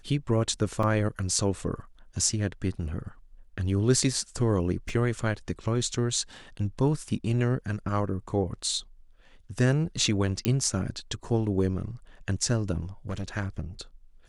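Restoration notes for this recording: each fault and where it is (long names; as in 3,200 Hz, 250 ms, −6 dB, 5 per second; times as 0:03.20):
0:00.83: drop-out 3.5 ms
0:04.89: drop-out 2.3 ms
0:10.45: click −10 dBFS
0:13.09–0:13.24: clipping −27.5 dBFS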